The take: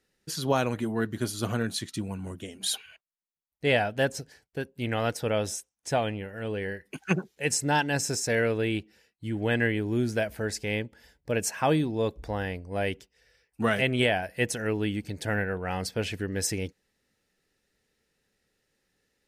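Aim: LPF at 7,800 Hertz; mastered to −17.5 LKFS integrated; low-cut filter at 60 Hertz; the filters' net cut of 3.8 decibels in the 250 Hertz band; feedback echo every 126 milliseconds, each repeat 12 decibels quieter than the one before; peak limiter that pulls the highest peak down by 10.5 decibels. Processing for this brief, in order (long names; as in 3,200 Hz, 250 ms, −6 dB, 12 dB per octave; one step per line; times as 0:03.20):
high-pass filter 60 Hz
low-pass filter 7,800 Hz
parametric band 250 Hz −5 dB
brickwall limiter −21 dBFS
repeating echo 126 ms, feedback 25%, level −12 dB
level +15.5 dB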